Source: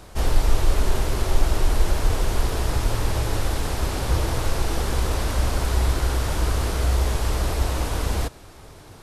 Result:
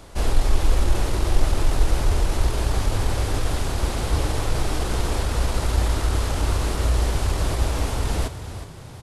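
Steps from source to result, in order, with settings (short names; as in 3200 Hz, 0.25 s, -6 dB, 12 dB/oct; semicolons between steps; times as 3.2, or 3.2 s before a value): pitch shift -1.5 st; frequency-shifting echo 0.365 s, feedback 40%, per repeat +32 Hz, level -11.5 dB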